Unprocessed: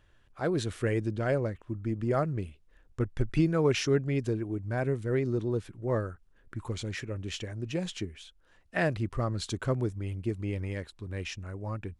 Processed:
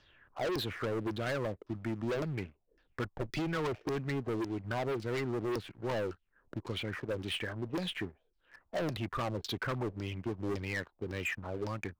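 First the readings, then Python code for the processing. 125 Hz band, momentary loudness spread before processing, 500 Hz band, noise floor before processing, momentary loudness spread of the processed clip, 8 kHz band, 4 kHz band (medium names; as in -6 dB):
-8.0 dB, 11 LU, -5.0 dB, -63 dBFS, 6 LU, -8.0 dB, 0.0 dB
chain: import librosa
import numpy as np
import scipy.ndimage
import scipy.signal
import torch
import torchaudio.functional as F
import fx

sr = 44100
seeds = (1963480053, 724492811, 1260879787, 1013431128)

y = fx.low_shelf(x, sr, hz=110.0, db=-9.5)
y = fx.filter_lfo_lowpass(y, sr, shape='saw_down', hz=1.8, low_hz=340.0, high_hz=5300.0, q=5.1)
y = fx.leveller(y, sr, passes=2)
y = 10.0 ** (-24.0 / 20.0) * np.tanh(y / 10.0 ** (-24.0 / 20.0))
y = fx.band_squash(y, sr, depth_pct=40)
y = F.gain(torch.from_numpy(y), -7.0).numpy()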